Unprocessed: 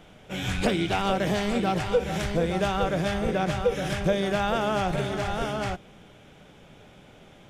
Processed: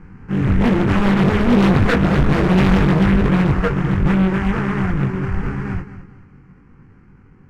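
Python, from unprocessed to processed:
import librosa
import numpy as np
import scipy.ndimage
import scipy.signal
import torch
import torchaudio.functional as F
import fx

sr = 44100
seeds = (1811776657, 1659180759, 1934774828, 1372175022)

y = fx.halfwave_hold(x, sr)
y = fx.doppler_pass(y, sr, speed_mps=13, closest_m=11.0, pass_at_s=2.04)
y = scipy.signal.sosfilt(scipy.signal.butter(2, 2600.0, 'lowpass', fs=sr, output='sos'), y)
y = fx.low_shelf(y, sr, hz=450.0, db=7.0)
y = fx.fixed_phaser(y, sr, hz=1500.0, stages=4)
y = np.clip(10.0 ** (22.0 / 20.0) * y, -1.0, 1.0) / 10.0 ** (22.0 / 20.0)
y = fx.doubler(y, sr, ms=21.0, db=-3)
y = fx.echo_feedback(y, sr, ms=218, feedback_pct=29, wet_db=-13.0)
y = fx.doppler_dist(y, sr, depth_ms=0.75)
y = F.gain(torch.from_numpy(y), 9.0).numpy()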